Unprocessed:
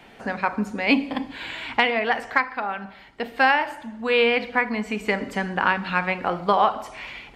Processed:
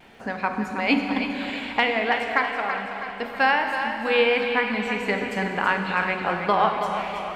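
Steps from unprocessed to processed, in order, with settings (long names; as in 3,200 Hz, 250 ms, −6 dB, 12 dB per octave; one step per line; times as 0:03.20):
echo with a time of its own for lows and highs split 350 Hz, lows 240 ms, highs 326 ms, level −8 dB
surface crackle 180 per second −53 dBFS
pitch vibrato 0.34 Hz 11 cents
four-comb reverb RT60 3.2 s, combs from 31 ms, DRR 6 dB
level −2 dB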